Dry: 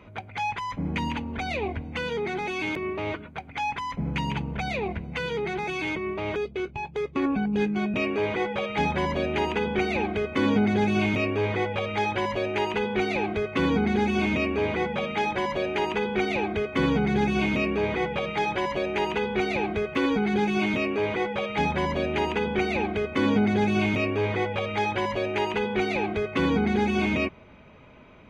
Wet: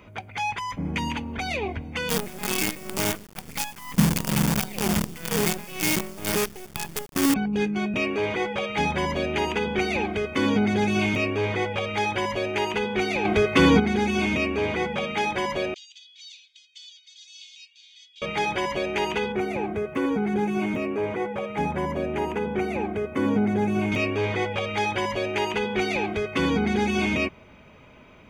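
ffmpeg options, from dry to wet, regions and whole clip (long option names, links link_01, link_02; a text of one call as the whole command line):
ffmpeg -i in.wav -filter_complex "[0:a]asettb=1/sr,asplit=3[link_01][link_02][link_03];[link_01]atrim=end=2.094[link_04];[link_02]atrim=start=2.09:end=7.34,asetpts=PTS-STARTPTS,afade=type=in:duration=0.004:curve=qsin,afade=type=out:start_time=5.246:duration=0.004:curve=qsin,equalizer=frequency=190:width=1.5:gain=14.5,tremolo=f=2.1:d=0.73,acrusher=bits=5:dc=4:mix=0:aa=0.000001[link_05];[link_03]atrim=start=7.336[link_06];[link_04][link_05]acrossfade=duration=0.004:curve1=hsin:curve2=qsin[link_07];[link_07][link_06]acrossfade=duration=0.004:curve1=qsin:curve2=hsin,asettb=1/sr,asplit=3[link_08][link_09][link_10];[link_08]atrim=end=13.254[link_11];[link_09]atrim=start=13.25:end=13.8,asetpts=PTS-STARTPTS,afade=type=in:duration=0.004:curve=qsin,afade=type=out:start_time=0.546:duration=0.004:curve=qsin,bandreject=frequency=109.6:width_type=h:width=4,bandreject=frequency=219.2:width_type=h:width=4,bandreject=frequency=328.8:width_type=h:width=4,bandreject=frequency=438.4:width_type=h:width=4,bandreject=frequency=548:width_type=h:width=4,bandreject=frequency=657.6:width_type=h:width=4,bandreject=frequency=767.2:width_type=h:width=4,bandreject=frequency=876.8:width_type=h:width=4,bandreject=frequency=986.4:width_type=h:width=4,bandreject=frequency=1096:width_type=h:width=4,bandreject=frequency=1205.6:width_type=h:width=4,bandreject=frequency=1315.2:width_type=h:width=4,bandreject=frequency=1424.8:width_type=h:width=4,bandreject=frequency=1534.4:width_type=h:width=4,bandreject=frequency=1644:width_type=h:width=4,bandreject=frequency=1753.6:width_type=h:width=4,bandreject=frequency=1863.2:width_type=h:width=4,bandreject=frequency=1972.8:width_type=h:width=4,bandreject=frequency=2082.4:width_type=h:width=4,bandreject=frequency=2192:width_type=h:width=4,bandreject=frequency=2301.6:width_type=h:width=4,bandreject=frequency=2411.2:width_type=h:width=4,bandreject=frequency=2520.8:width_type=h:width=4,bandreject=frequency=2630.4:width_type=h:width=4,bandreject=frequency=2740:width_type=h:width=4,bandreject=frequency=2849.6:width_type=h:width=4,bandreject=frequency=2959.2:width_type=h:width=4,bandreject=frequency=3068.8:width_type=h:width=4,bandreject=frequency=3178.4:width_type=h:width=4,bandreject=frequency=3288:width_type=h:width=4,bandreject=frequency=3397.6:width_type=h:width=4,bandreject=frequency=3507.2:width_type=h:width=4,bandreject=frequency=3616.8:width_type=h:width=4,bandreject=frequency=3726.4:width_type=h:width=4,bandreject=frequency=3836:width_type=h:width=4,bandreject=frequency=3945.6:width_type=h:width=4,bandreject=frequency=4055.2:width_type=h:width=4,bandreject=frequency=4164.8:width_type=h:width=4,bandreject=frequency=4274.4:width_type=h:width=4,acontrast=86[link_12];[link_10]atrim=start=13.796[link_13];[link_11][link_12]acrossfade=duration=0.004:curve1=hsin:curve2=qsin[link_14];[link_14][link_13]acrossfade=duration=0.004:curve1=qsin:curve2=hsin,asettb=1/sr,asplit=3[link_15][link_16][link_17];[link_15]atrim=end=15.744[link_18];[link_16]atrim=start=15.74:end=18.22,asetpts=PTS-STARTPTS,afade=type=in:duration=0.004:curve=qsin,afade=type=out:start_time=2.476:duration=0.004:curve=qsin,asuperpass=centerf=5400:order=8:qfactor=1.2,highshelf=frequency=5000:gain=-11.5[link_19];[link_17]atrim=start=18.216[link_20];[link_18][link_19]acrossfade=duration=0.004:curve1=hsin:curve2=qsin[link_21];[link_21][link_20]acrossfade=duration=0.004:curve1=qsin:curve2=hsin,asettb=1/sr,asplit=3[link_22][link_23][link_24];[link_22]atrim=end=19.324[link_25];[link_23]atrim=start=19.32:end=23.92,asetpts=PTS-STARTPTS,afade=type=in:duration=0.004:curve=qsin,afade=type=out:start_time=4.596:duration=0.004:curve=qsin,highpass=73,equalizer=frequency=4200:width=0.69:gain=-15[link_26];[link_24]atrim=start=23.916[link_27];[link_25][link_26]acrossfade=duration=0.004:curve1=hsin:curve2=qsin[link_28];[link_28][link_27]acrossfade=duration=0.004:curve1=qsin:curve2=hsin,highshelf=frequency=4600:gain=11.5,bandreject=frequency=4000:width=11" out.wav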